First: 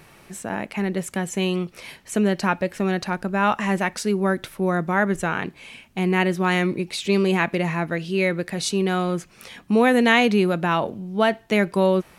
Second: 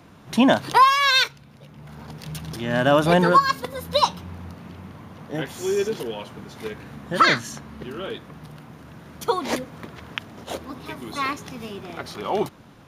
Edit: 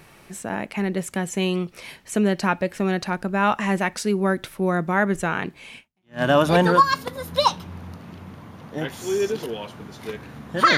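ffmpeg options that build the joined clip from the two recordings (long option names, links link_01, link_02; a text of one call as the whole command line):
ffmpeg -i cue0.wav -i cue1.wav -filter_complex "[0:a]apad=whole_dur=10.77,atrim=end=10.77,atrim=end=6.22,asetpts=PTS-STARTPTS[link_01];[1:a]atrim=start=2.35:end=7.34,asetpts=PTS-STARTPTS[link_02];[link_01][link_02]acrossfade=duration=0.44:curve1=exp:curve2=exp" out.wav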